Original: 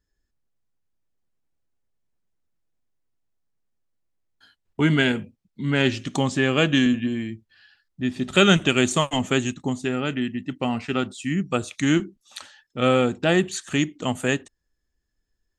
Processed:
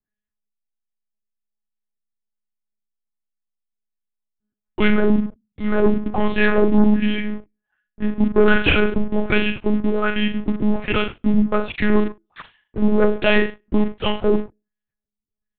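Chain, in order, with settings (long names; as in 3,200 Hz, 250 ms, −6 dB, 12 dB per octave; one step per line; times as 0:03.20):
auto-filter low-pass sine 1.3 Hz 230–3,000 Hz
on a send: flutter between parallel walls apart 7.7 metres, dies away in 0.34 s
on the sum: leveller curve on the samples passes 3
one-pitch LPC vocoder at 8 kHz 210 Hz
level −6.5 dB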